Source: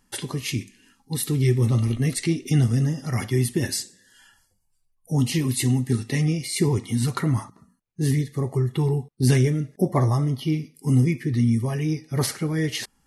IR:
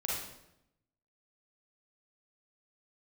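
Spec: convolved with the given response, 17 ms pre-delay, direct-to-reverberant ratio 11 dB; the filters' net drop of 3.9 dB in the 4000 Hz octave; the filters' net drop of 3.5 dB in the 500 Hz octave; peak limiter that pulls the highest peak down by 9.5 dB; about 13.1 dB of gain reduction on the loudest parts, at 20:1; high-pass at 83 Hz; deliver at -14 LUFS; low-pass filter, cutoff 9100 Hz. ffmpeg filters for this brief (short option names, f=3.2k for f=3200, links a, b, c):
-filter_complex "[0:a]highpass=83,lowpass=9.1k,equalizer=f=500:t=o:g=-5,equalizer=f=4k:t=o:g=-5,acompressor=threshold=-28dB:ratio=20,alimiter=level_in=4dB:limit=-24dB:level=0:latency=1,volume=-4dB,asplit=2[a][b];[1:a]atrim=start_sample=2205,adelay=17[c];[b][c]afir=irnorm=-1:irlink=0,volume=-15.5dB[d];[a][d]amix=inputs=2:normalize=0,volume=22.5dB"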